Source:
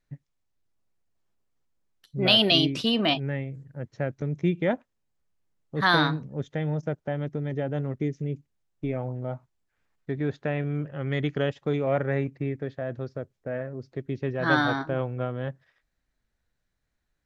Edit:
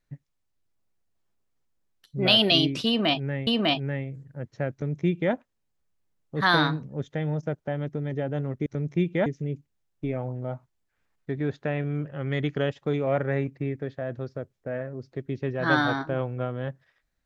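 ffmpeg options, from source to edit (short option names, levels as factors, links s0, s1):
-filter_complex "[0:a]asplit=4[s0][s1][s2][s3];[s0]atrim=end=3.472[s4];[s1]atrim=start=2.868:end=8.062[s5];[s2]atrim=start=4.128:end=4.732[s6];[s3]atrim=start=8.058[s7];[s4][s5]acrossfade=d=0.004:c1=hsin:c2=hsin[s8];[s8][s6]acrossfade=d=0.004:c1=hsin:c2=hsin[s9];[s9][s7]acrossfade=d=0.004:c1=hsin:c2=hsin"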